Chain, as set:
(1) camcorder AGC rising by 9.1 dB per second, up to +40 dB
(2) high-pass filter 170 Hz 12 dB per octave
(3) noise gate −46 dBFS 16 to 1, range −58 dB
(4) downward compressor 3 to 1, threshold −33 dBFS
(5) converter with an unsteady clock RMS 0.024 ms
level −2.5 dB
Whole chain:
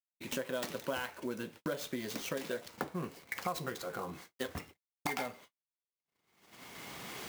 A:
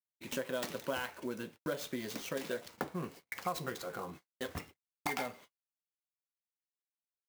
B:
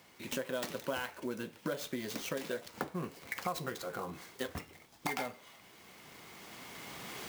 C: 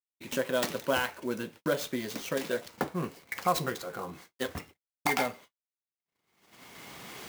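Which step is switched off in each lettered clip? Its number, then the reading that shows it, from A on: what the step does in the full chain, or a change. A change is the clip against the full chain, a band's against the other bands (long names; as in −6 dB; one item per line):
1, change in momentary loudness spread −4 LU
3, change in momentary loudness spread +5 LU
4, change in momentary loudness spread +5 LU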